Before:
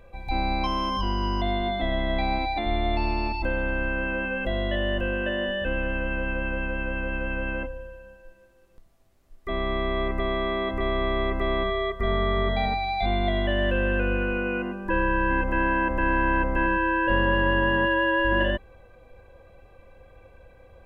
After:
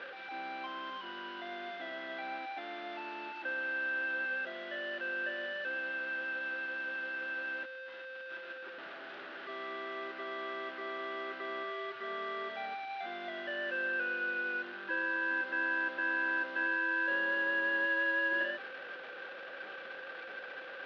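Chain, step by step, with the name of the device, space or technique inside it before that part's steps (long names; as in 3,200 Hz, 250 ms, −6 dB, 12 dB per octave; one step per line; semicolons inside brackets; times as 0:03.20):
digital answering machine (band-pass filter 330–3,200 Hz; linear delta modulator 32 kbit/s, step −29 dBFS; loudspeaker in its box 390–3,200 Hz, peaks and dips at 480 Hz −5 dB, 690 Hz −6 dB, 1,000 Hz −8 dB, 1,500 Hz +8 dB, 2,200 Hz −5 dB)
level −8 dB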